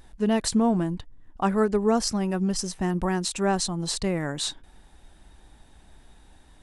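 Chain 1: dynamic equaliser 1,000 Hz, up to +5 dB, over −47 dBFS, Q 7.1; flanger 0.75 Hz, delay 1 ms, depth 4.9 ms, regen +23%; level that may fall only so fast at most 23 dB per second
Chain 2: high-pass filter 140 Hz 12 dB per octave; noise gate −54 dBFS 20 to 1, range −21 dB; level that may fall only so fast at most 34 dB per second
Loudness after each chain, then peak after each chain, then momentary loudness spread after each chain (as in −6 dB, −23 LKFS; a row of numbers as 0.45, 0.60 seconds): −27.5, −25.0 LKFS; −9.5, −9.0 dBFS; 10, 12 LU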